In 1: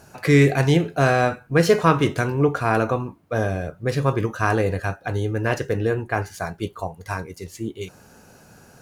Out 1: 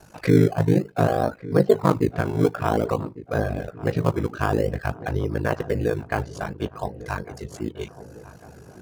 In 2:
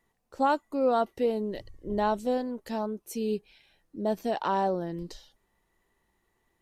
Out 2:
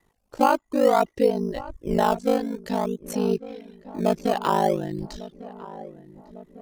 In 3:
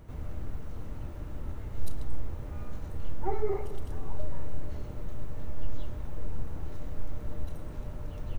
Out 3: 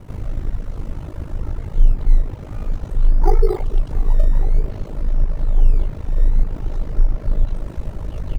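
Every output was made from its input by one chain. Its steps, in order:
treble ducked by the level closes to 970 Hz, closed at -15 dBFS; ring modulator 26 Hz; reverb removal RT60 0.56 s; in parallel at -11.5 dB: decimation with a swept rate 16×, swing 100% 0.53 Hz; on the sum: darkening echo 1.151 s, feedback 62%, low-pass 1500 Hz, level -17 dB; match loudness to -24 LUFS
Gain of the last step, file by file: +0.5, +8.0, +12.0 dB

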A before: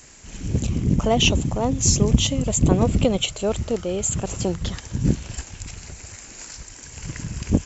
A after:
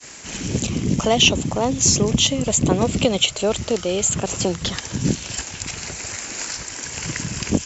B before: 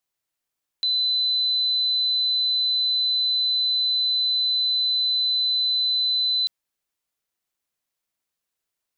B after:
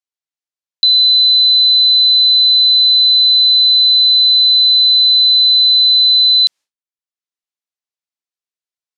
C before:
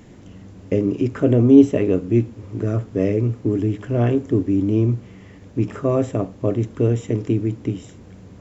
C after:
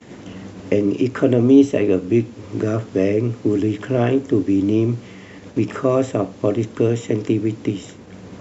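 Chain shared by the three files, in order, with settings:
HPF 220 Hz 6 dB/oct; expander -42 dBFS; LPF 6300 Hz 12 dB/oct; high shelf 3300 Hz +8 dB; three-band squash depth 40%; normalise peaks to -2 dBFS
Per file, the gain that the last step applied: +3.5, +8.5, +3.5 dB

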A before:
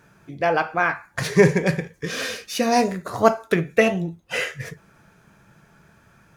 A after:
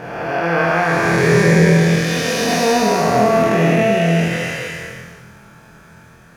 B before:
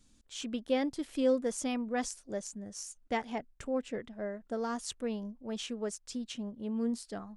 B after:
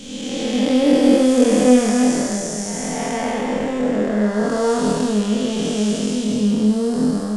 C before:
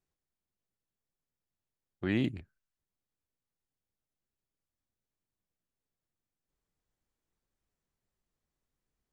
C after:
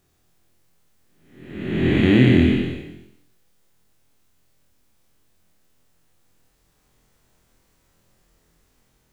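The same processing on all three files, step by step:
time blur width 0.657 s; flutter echo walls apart 4.1 m, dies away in 0.4 s; normalise peaks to -1.5 dBFS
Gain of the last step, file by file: +10.5, +21.0, +23.5 dB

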